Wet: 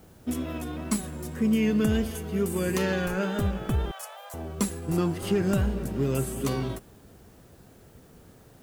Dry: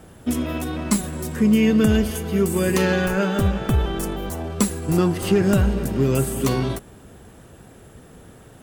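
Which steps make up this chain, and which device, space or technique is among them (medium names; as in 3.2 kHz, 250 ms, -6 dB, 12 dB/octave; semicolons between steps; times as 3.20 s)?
plain cassette with noise reduction switched in (tape noise reduction on one side only decoder only; wow and flutter; white noise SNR 35 dB); 3.91–4.34 s: steep high-pass 550 Hz 72 dB/octave; trim -7 dB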